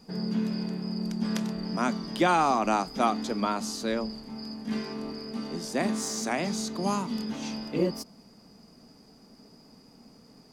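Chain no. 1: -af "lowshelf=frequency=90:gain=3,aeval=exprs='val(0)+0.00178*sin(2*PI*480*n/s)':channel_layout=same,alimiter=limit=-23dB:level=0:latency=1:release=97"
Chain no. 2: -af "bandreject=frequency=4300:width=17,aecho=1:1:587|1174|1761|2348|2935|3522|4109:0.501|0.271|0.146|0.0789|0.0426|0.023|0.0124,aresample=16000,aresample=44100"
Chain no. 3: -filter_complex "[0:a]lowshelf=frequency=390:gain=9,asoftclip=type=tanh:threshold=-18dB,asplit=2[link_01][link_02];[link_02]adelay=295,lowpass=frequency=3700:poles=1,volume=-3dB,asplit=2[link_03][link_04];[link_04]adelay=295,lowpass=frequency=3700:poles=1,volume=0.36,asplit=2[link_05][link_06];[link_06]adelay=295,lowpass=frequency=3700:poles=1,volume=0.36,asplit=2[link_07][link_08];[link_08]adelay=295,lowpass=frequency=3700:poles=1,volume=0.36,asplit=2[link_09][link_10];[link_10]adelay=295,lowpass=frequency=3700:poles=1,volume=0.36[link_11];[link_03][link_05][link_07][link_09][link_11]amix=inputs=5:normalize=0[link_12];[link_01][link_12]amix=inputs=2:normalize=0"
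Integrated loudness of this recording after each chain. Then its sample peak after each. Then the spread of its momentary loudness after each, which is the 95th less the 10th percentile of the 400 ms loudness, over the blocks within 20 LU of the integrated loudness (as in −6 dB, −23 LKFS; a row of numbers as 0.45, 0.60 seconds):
−33.0, −29.0, −25.0 LKFS; −23.0, −11.5, −13.0 dBFS; 21, 17, 6 LU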